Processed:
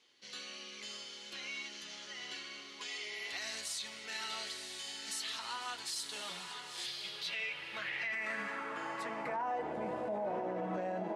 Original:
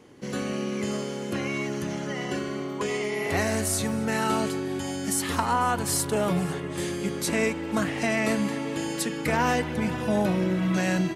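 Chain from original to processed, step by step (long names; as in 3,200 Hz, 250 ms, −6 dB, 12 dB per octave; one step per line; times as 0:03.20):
flanger 0.87 Hz, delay 7.8 ms, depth 3.3 ms, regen −44%
feedback delay with all-pass diffusion 999 ms, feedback 45%, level −8 dB
band-pass filter sweep 3,900 Hz → 660 Hz, 0:06.99–0:09.83
0:06.86–0:08.13: octave-band graphic EQ 125/250/500/1,000/4,000/8,000 Hz +11/−12/+3/−4/+6/−11 dB
brickwall limiter −34 dBFS, peak gain reduction 11.5 dB
level +4.5 dB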